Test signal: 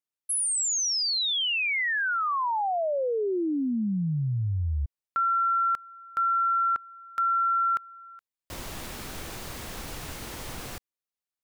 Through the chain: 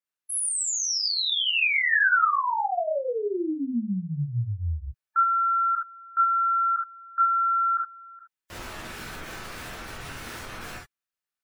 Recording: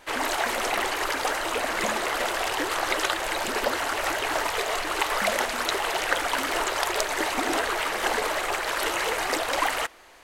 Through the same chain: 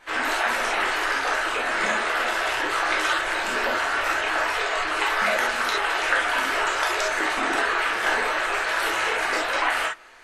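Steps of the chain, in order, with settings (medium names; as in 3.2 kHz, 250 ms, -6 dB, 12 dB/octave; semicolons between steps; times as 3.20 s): spectral gate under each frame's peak -25 dB strong; peaking EQ 1.6 kHz +7 dB 1.4 oct; gated-style reverb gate 90 ms flat, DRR -3.5 dB; trim -6 dB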